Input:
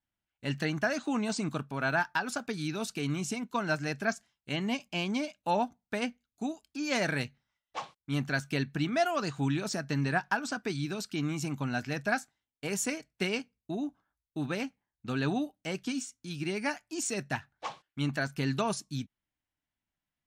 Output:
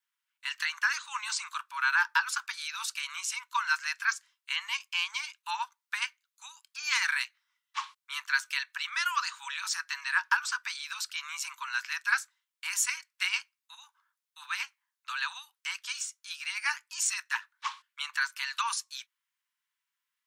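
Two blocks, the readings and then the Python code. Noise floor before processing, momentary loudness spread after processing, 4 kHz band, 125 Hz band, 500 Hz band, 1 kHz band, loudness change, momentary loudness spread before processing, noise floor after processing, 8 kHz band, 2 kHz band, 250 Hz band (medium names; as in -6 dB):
under -85 dBFS, 11 LU, +5.5 dB, under -40 dB, under -40 dB, +0.5 dB, +1.5 dB, 10 LU, under -85 dBFS, +5.5 dB, +5.5 dB, under -40 dB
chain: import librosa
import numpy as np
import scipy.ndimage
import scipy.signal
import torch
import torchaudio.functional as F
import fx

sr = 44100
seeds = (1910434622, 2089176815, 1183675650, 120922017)

y = scipy.signal.sosfilt(scipy.signal.butter(16, 940.0, 'highpass', fs=sr, output='sos'), x)
y = y * librosa.db_to_amplitude(5.5)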